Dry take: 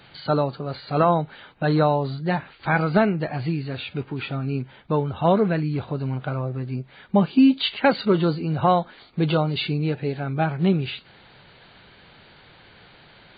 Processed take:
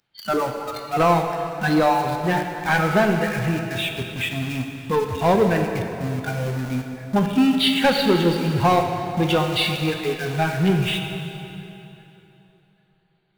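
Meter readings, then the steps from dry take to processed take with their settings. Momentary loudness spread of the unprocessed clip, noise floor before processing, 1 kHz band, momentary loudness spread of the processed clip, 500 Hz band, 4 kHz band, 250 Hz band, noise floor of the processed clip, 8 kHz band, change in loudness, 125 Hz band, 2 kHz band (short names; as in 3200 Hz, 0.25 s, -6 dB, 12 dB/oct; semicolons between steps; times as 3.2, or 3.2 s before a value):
11 LU, -51 dBFS, +3.0 dB, 9 LU, +2.0 dB, +6.0 dB, +0.5 dB, -62 dBFS, n/a, +1.5 dB, 0.0 dB, +5.5 dB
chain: spectral noise reduction 29 dB; dynamic EQ 210 Hz, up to -4 dB, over -35 dBFS, Q 1.4; in parallel at -8 dB: companded quantiser 2-bit; on the sum: soft clip -14 dBFS, distortion -7 dB; plate-style reverb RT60 3.2 s, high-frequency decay 0.8×, DRR 3.5 dB; gain +3 dB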